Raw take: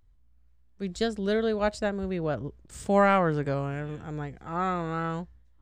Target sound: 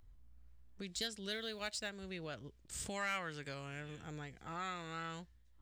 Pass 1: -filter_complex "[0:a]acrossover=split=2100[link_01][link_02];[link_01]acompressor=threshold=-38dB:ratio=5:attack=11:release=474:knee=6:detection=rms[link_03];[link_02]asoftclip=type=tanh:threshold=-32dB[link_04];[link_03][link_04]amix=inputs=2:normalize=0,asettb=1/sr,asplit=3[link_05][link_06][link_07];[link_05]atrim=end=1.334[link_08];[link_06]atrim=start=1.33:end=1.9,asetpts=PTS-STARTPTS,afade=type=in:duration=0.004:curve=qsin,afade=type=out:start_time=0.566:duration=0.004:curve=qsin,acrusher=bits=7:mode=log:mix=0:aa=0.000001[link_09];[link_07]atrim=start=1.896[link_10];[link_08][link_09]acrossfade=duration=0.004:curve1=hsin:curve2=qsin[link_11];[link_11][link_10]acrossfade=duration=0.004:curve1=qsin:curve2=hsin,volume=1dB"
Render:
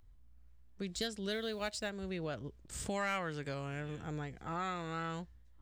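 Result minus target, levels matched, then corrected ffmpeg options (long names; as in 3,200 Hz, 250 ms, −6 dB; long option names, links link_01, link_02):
downward compressor: peak gain reduction −7 dB
-filter_complex "[0:a]acrossover=split=2100[link_01][link_02];[link_01]acompressor=threshold=-46.5dB:ratio=5:attack=11:release=474:knee=6:detection=rms[link_03];[link_02]asoftclip=type=tanh:threshold=-32dB[link_04];[link_03][link_04]amix=inputs=2:normalize=0,asettb=1/sr,asplit=3[link_05][link_06][link_07];[link_05]atrim=end=1.334[link_08];[link_06]atrim=start=1.33:end=1.9,asetpts=PTS-STARTPTS,afade=type=in:duration=0.004:curve=qsin,afade=type=out:start_time=0.566:duration=0.004:curve=qsin,acrusher=bits=7:mode=log:mix=0:aa=0.000001[link_09];[link_07]atrim=start=1.896[link_10];[link_08][link_09]acrossfade=duration=0.004:curve1=hsin:curve2=qsin[link_11];[link_11][link_10]acrossfade=duration=0.004:curve1=qsin:curve2=hsin,volume=1dB"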